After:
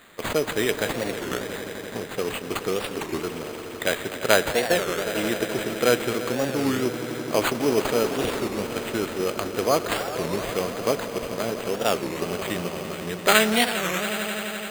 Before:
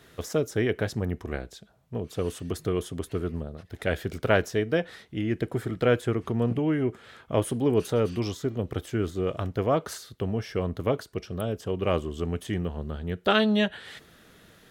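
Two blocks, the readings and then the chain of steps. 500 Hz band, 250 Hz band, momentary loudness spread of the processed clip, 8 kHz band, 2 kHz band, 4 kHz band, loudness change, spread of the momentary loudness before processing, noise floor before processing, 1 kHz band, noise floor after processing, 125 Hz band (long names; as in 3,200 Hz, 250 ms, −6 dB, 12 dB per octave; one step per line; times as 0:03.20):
+3.5 dB, +0.5 dB, 9 LU, +12.5 dB, +7.5 dB, +8.5 dB, +3.0 dB, 11 LU, −57 dBFS, +6.5 dB, −35 dBFS, −6.0 dB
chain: high-shelf EQ 3,300 Hz +10.5 dB
in parallel at −8.5 dB: bit reduction 5 bits
on the sum: high-pass filter 150 Hz 12 dB per octave
low-shelf EQ 220 Hz −9.5 dB
echo that builds up and dies away 85 ms, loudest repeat 5, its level −14 dB
bad sample-rate conversion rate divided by 8×, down none, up hold
wow of a warped record 33 1/3 rpm, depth 250 cents
level +1 dB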